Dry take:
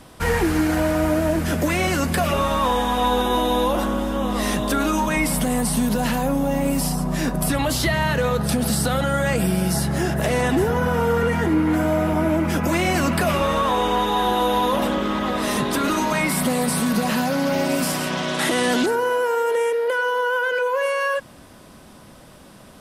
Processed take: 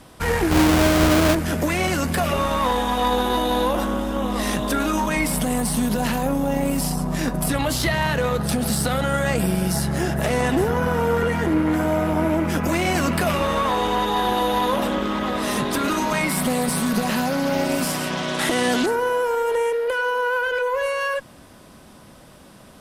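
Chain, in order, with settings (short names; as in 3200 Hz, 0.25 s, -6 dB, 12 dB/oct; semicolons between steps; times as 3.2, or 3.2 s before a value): 0.51–1.35 half-waves squared off; added harmonics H 2 -9 dB, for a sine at -6.5 dBFS; gain -1 dB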